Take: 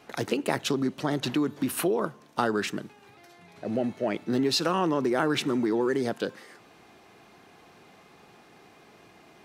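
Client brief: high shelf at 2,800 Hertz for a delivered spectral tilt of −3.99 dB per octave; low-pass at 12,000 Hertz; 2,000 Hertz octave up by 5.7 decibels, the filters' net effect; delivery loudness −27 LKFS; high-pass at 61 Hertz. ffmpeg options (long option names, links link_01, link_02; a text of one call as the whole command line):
ffmpeg -i in.wav -af "highpass=61,lowpass=12000,equalizer=frequency=2000:width_type=o:gain=6.5,highshelf=frequency=2800:gain=3,volume=-0.5dB" out.wav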